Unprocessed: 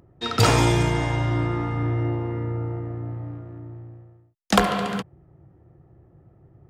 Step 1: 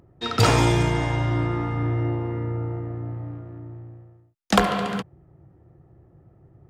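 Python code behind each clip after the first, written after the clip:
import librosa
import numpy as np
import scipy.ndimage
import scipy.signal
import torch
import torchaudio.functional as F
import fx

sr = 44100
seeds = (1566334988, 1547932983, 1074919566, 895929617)

y = fx.high_shelf(x, sr, hz=6800.0, db=-3.5)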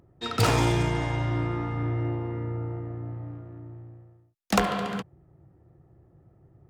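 y = fx.self_delay(x, sr, depth_ms=0.1)
y = y * librosa.db_to_amplitude(-4.0)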